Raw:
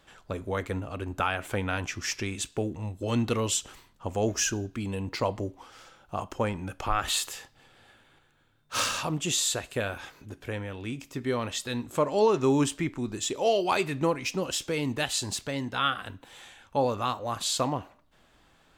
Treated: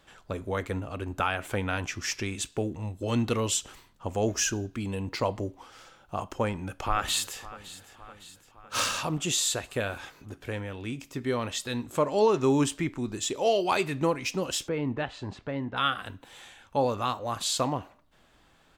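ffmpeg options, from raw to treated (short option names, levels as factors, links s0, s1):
-filter_complex "[0:a]asplit=2[s0][s1];[s1]afade=t=in:st=6.33:d=0.01,afade=t=out:st=7.39:d=0.01,aecho=0:1:560|1120|1680|2240|2800|3360:0.141254|0.0847523|0.0508514|0.0305108|0.0183065|0.0109839[s2];[s0][s2]amix=inputs=2:normalize=0,asplit=3[s3][s4][s5];[s3]afade=t=out:st=14.67:d=0.02[s6];[s4]lowpass=1700,afade=t=in:st=14.67:d=0.02,afade=t=out:st=15.76:d=0.02[s7];[s5]afade=t=in:st=15.76:d=0.02[s8];[s6][s7][s8]amix=inputs=3:normalize=0"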